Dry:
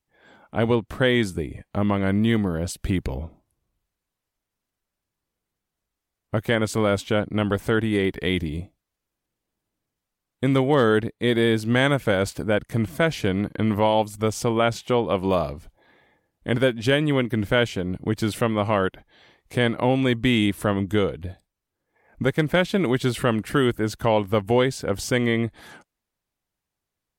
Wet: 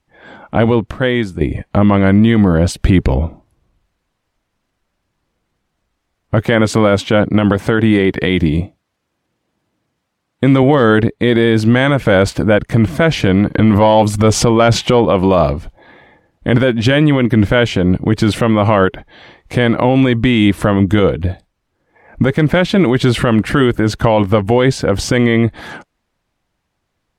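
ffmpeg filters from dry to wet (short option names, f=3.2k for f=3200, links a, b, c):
-filter_complex "[0:a]asettb=1/sr,asplit=3[a][b][c];[a]atrim=end=6.444[d];[b]atrim=start=6.44:end=10.63,asetpts=PTS-STARTPTS,afade=t=in:d=0.004:c=qsin,afade=t=out:st=4.186:d=0.004:c=qsin,highpass=86[e];[c]atrim=start=10.626[f];[d][e]acrossfade=d=0.004:c1=hsin:c2=qsin[g];[g][f]acrossfade=d=0.004:c1=qsin:c2=hsin,asettb=1/sr,asplit=3[h][i][j];[h]atrim=end=13.534[k];[i]atrim=start=13.53:end=15.05,asetpts=PTS-STARTPTS,afade=t=in:d=0.004:c=qsin,afade=t=out:st=1.516:d=0.004:c=qsin,acontrast=78[l];[j]atrim=start=15.046[m];[k][l]acrossfade=d=0.004:c1=hsin:c2=qsin[n];[n][m]acrossfade=d=0.004:c1=qsin:c2=hsin,asplit=3[o][p][q];[o]atrim=end=0.912[r];[p]atrim=start=0.908:end=1.412,asetpts=PTS-STARTPTS,volume=-10.5dB[s];[q]atrim=start=1.408[t];[r][s]acrossfade=d=0.004:c1=hsin:c2=hsin[u];[u][t]acrossfade=d=0.004:c1=hsin:c2=hsin,aemphasis=mode=reproduction:type=50fm,bandreject=f=420:w=13,alimiter=level_in=16.5dB:limit=-1dB:release=50:level=0:latency=1,volume=-1dB"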